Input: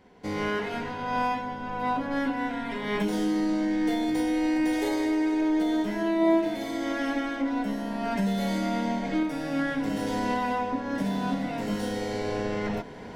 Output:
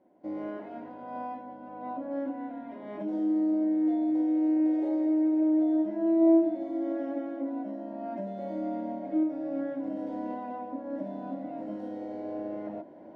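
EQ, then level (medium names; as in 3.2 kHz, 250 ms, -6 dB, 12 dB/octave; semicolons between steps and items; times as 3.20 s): two resonant band-passes 440 Hz, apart 0.82 oct; +2.5 dB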